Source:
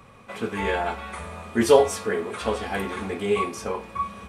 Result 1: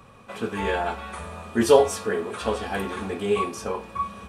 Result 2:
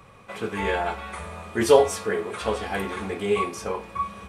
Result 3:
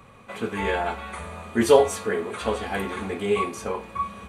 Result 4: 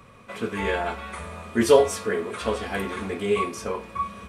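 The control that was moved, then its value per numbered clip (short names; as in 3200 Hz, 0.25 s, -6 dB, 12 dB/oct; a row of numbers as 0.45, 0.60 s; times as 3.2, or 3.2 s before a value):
notch, frequency: 2100, 240, 5300, 810 Hz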